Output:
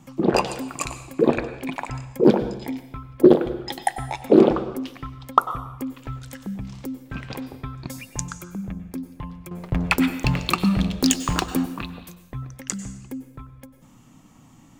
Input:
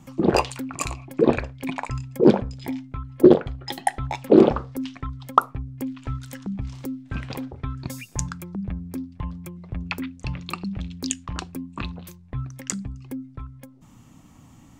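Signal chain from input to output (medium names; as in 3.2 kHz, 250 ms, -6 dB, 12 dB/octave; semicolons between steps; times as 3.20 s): peaking EQ 71 Hz -10 dB 0.93 oct; 9.51–11.66 s: waveshaping leveller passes 3; plate-style reverb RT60 0.84 s, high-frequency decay 1×, pre-delay 85 ms, DRR 11 dB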